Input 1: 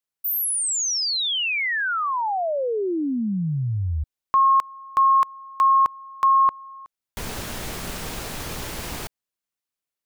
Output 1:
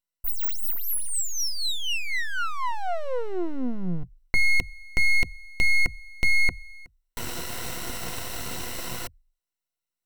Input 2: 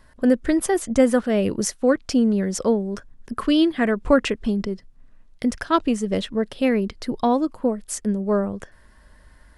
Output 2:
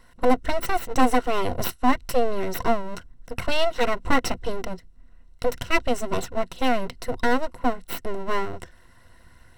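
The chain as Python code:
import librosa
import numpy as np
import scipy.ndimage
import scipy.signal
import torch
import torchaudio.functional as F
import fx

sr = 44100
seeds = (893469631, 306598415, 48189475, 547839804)

y = np.abs(x)
y = fx.ripple_eq(y, sr, per_octave=2.0, db=9)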